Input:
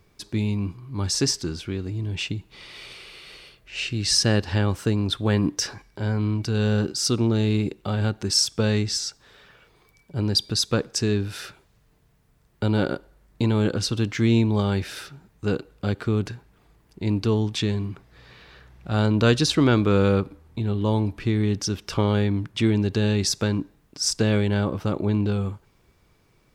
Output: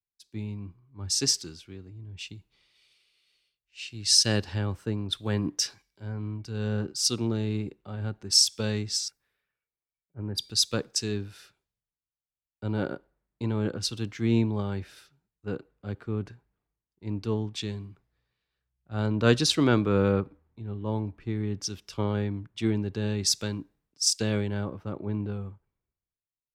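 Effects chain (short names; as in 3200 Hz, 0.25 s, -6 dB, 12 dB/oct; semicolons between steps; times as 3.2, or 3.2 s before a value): 9.08–10.38 band shelf 4900 Hz -14.5 dB; three-band expander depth 100%; gain -8 dB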